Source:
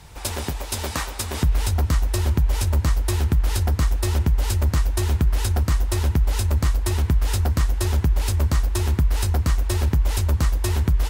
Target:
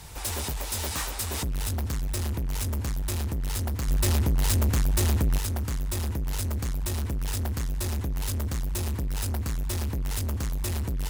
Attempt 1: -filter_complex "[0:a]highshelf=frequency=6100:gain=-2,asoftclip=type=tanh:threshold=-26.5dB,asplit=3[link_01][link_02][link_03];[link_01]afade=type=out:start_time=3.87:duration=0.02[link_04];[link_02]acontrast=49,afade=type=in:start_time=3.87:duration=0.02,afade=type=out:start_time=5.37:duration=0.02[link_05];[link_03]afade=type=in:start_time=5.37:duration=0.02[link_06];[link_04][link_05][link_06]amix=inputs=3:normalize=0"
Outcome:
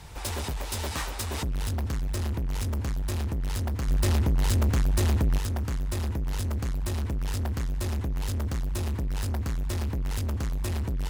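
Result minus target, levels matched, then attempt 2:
8,000 Hz band −5.0 dB
-filter_complex "[0:a]highshelf=frequency=6100:gain=9,asoftclip=type=tanh:threshold=-26.5dB,asplit=3[link_01][link_02][link_03];[link_01]afade=type=out:start_time=3.87:duration=0.02[link_04];[link_02]acontrast=49,afade=type=in:start_time=3.87:duration=0.02,afade=type=out:start_time=5.37:duration=0.02[link_05];[link_03]afade=type=in:start_time=5.37:duration=0.02[link_06];[link_04][link_05][link_06]amix=inputs=3:normalize=0"

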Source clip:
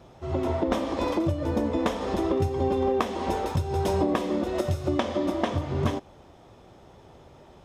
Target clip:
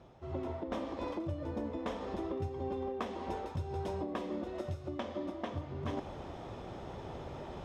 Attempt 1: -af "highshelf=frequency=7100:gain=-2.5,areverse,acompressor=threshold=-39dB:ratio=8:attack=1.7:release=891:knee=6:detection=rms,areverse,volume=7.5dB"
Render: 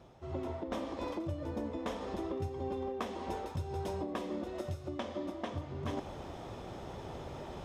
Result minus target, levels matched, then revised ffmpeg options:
8,000 Hz band +5.0 dB
-af "highshelf=frequency=7100:gain=-13.5,areverse,acompressor=threshold=-39dB:ratio=8:attack=1.7:release=891:knee=6:detection=rms,areverse,volume=7.5dB"

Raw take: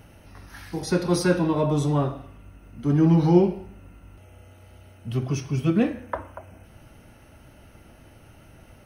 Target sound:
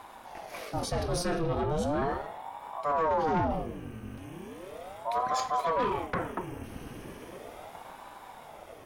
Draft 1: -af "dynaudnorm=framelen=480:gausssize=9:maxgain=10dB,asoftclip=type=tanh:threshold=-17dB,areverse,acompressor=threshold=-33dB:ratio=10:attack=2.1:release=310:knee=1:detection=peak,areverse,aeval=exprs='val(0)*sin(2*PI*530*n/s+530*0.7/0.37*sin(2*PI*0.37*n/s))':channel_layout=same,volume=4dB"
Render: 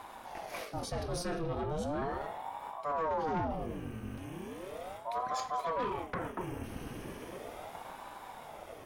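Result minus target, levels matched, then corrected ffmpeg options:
downward compressor: peak gain reduction +6 dB
-af "dynaudnorm=framelen=480:gausssize=9:maxgain=10dB,asoftclip=type=tanh:threshold=-17dB,areverse,acompressor=threshold=-26.5dB:ratio=10:attack=2.1:release=310:knee=1:detection=peak,areverse,aeval=exprs='val(0)*sin(2*PI*530*n/s+530*0.7/0.37*sin(2*PI*0.37*n/s))':channel_layout=same,volume=4dB"

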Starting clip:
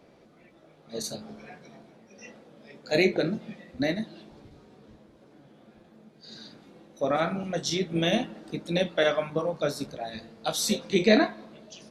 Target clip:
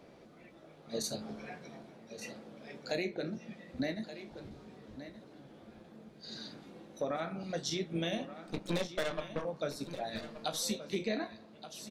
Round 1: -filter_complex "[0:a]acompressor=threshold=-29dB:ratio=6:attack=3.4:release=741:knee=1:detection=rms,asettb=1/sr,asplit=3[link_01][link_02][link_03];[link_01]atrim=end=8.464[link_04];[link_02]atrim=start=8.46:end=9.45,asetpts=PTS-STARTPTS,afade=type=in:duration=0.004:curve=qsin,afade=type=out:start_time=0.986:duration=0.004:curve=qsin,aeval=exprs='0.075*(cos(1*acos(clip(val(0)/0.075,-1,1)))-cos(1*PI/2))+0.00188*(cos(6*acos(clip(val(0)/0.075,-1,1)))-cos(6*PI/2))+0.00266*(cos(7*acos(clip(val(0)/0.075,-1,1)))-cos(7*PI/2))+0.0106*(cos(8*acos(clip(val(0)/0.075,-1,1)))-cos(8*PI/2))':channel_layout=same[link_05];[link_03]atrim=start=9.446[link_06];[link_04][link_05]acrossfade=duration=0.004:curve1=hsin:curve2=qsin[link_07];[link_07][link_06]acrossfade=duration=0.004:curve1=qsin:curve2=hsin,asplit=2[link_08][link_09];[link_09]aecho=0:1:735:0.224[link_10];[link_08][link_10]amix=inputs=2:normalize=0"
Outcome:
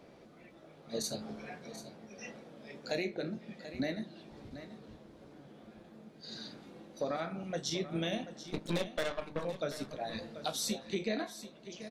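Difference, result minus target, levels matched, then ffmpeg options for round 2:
echo 441 ms early
-filter_complex "[0:a]acompressor=threshold=-29dB:ratio=6:attack=3.4:release=741:knee=1:detection=rms,asettb=1/sr,asplit=3[link_01][link_02][link_03];[link_01]atrim=end=8.464[link_04];[link_02]atrim=start=8.46:end=9.45,asetpts=PTS-STARTPTS,afade=type=in:duration=0.004:curve=qsin,afade=type=out:start_time=0.986:duration=0.004:curve=qsin,aeval=exprs='0.075*(cos(1*acos(clip(val(0)/0.075,-1,1)))-cos(1*PI/2))+0.00188*(cos(6*acos(clip(val(0)/0.075,-1,1)))-cos(6*PI/2))+0.00266*(cos(7*acos(clip(val(0)/0.075,-1,1)))-cos(7*PI/2))+0.0106*(cos(8*acos(clip(val(0)/0.075,-1,1)))-cos(8*PI/2))':channel_layout=same[link_05];[link_03]atrim=start=9.446[link_06];[link_04][link_05]acrossfade=duration=0.004:curve1=hsin:curve2=qsin[link_07];[link_07][link_06]acrossfade=duration=0.004:curve1=qsin:curve2=hsin,asplit=2[link_08][link_09];[link_09]aecho=0:1:1176:0.224[link_10];[link_08][link_10]amix=inputs=2:normalize=0"

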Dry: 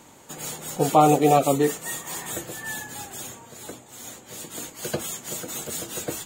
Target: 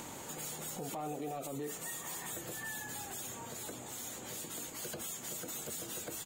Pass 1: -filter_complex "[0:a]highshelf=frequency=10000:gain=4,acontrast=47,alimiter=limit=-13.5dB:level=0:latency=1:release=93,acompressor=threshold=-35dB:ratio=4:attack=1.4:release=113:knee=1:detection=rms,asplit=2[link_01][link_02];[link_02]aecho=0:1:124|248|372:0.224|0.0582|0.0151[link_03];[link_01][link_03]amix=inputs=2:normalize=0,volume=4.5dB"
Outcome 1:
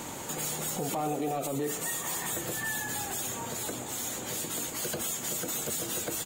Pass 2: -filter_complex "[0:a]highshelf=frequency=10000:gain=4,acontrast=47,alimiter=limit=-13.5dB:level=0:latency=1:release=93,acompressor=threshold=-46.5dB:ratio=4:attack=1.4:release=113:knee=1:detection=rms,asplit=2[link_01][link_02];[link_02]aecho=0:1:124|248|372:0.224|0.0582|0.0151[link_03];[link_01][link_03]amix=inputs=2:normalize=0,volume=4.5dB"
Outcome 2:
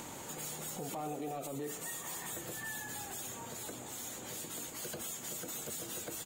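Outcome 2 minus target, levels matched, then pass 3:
echo-to-direct +8.5 dB
-filter_complex "[0:a]highshelf=frequency=10000:gain=4,acontrast=47,alimiter=limit=-13.5dB:level=0:latency=1:release=93,acompressor=threshold=-46.5dB:ratio=4:attack=1.4:release=113:knee=1:detection=rms,asplit=2[link_01][link_02];[link_02]aecho=0:1:124|248:0.0841|0.0219[link_03];[link_01][link_03]amix=inputs=2:normalize=0,volume=4.5dB"

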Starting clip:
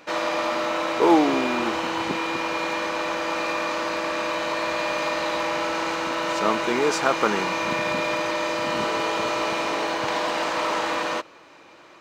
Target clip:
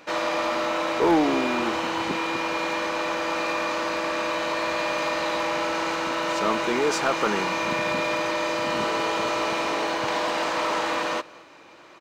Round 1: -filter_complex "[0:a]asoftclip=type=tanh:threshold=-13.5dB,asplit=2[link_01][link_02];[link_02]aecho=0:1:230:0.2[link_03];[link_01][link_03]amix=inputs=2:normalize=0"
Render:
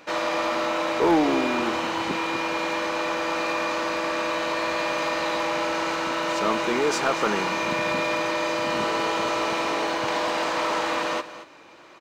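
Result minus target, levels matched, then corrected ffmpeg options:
echo-to-direct +9.5 dB
-filter_complex "[0:a]asoftclip=type=tanh:threshold=-13.5dB,asplit=2[link_01][link_02];[link_02]aecho=0:1:230:0.0668[link_03];[link_01][link_03]amix=inputs=2:normalize=0"

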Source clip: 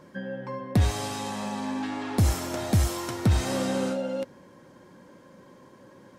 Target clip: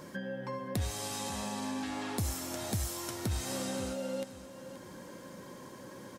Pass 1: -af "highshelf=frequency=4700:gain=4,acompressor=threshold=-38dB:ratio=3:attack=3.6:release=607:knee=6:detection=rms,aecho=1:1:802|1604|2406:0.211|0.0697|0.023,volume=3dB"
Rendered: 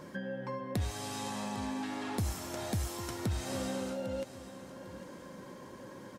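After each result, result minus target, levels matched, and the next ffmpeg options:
echo 274 ms late; 8,000 Hz band −3.5 dB
-af "highshelf=frequency=4700:gain=4,acompressor=threshold=-38dB:ratio=3:attack=3.6:release=607:knee=6:detection=rms,aecho=1:1:528|1056|1584:0.211|0.0697|0.023,volume=3dB"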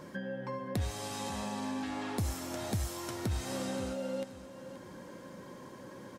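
8,000 Hz band −4.0 dB
-af "highshelf=frequency=4700:gain=11.5,acompressor=threshold=-38dB:ratio=3:attack=3.6:release=607:knee=6:detection=rms,aecho=1:1:528|1056|1584:0.211|0.0697|0.023,volume=3dB"

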